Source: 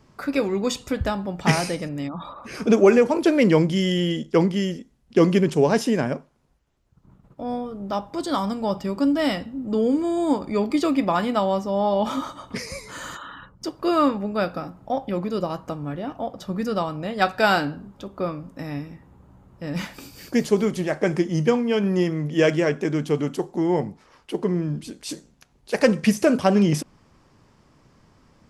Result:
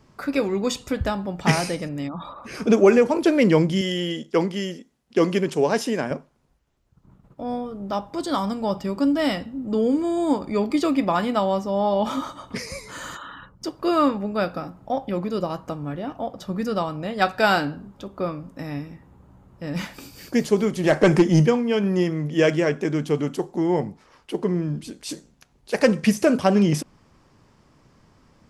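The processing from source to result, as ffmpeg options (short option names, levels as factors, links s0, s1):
-filter_complex "[0:a]asettb=1/sr,asplit=3[s0][s1][s2];[s0]atrim=end=3.814[s3];[s1]atrim=start=3.81:end=6.11,asetpts=PTS-STARTPTS,afade=t=in:d=0.004:c=qsin,afade=t=out:st=2.296:d=0.004:c=qsin,highpass=f=310:p=1[s4];[s2]atrim=start=6.106[s5];[s3][s4]acrossfade=d=0.004:c1=hsin:c2=qsin[s6];[s6][s5]acrossfade=d=0.004:c1=qsin:c2=hsin,asplit=3[s7][s8][s9];[s7]afade=t=out:st=20.83:d=0.02[s10];[s8]aeval=exprs='0.398*sin(PI/2*1.58*val(0)/0.398)':c=same,afade=t=in:st=20.83:d=0.02,afade=t=out:st=21.45:d=0.02[s11];[s9]afade=t=in:st=21.45:d=0.02[s12];[s10][s11][s12]amix=inputs=3:normalize=0"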